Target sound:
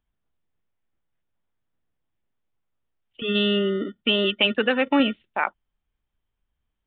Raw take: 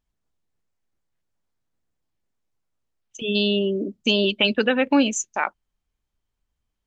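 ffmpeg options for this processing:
-filter_complex "[0:a]asettb=1/sr,asplit=3[s0][s1][s2];[s0]atrim=end=3.824[s3];[s1]atrim=start=3.82:end=5,asetpts=PTS-STARTPTS,afade=t=in:d=0.004:c=qsin,afade=t=out:st=1.176:d=0.004:c=qsin,lowshelf=f=240:g=-5[s4];[s2]atrim=start=4.996[s5];[s3][s4]acrossfade=d=0.004:c1=hsin:c2=qsin[s6];[s6][s5]acrossfade=d=0.004:c1=qsin:c2=hsin,acrossover=split=310[s7][s8];[s7]acrusher=samples=27:mix=1:aa=0.000001[s9];[s9][s8]amix=inputs=2:normalize=0,aresample=8000,aresample=44100"

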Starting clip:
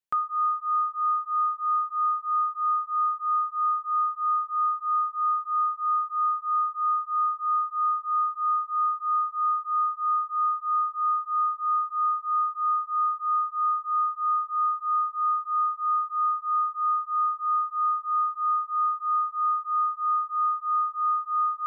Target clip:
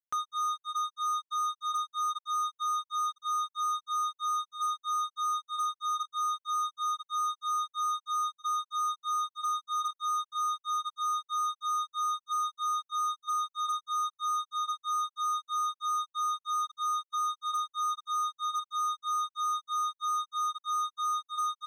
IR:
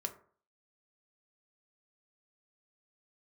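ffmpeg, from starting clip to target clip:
-af "flanger=delay=2.4:depth=4.9:regen=-84:speed=0.13:shape=sinusoidal,aecho=1:1:472|944|1416:0.0794|0.0357|0.0161,acrusher=bits=4:mix=0:aa=0.5,volume=0.668"

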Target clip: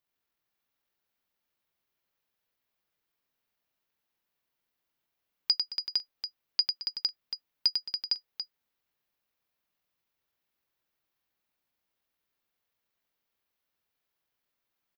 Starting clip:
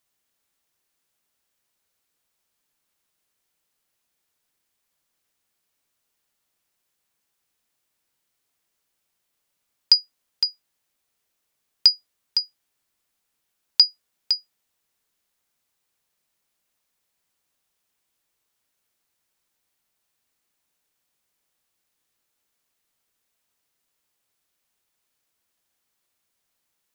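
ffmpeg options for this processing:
-af "equalizer=f=8300:t=o:w=0.91:g=-14,atempo=1.8,aecho=1:1:98|219|457:0.531|0.158|0.668,volume=0.501"

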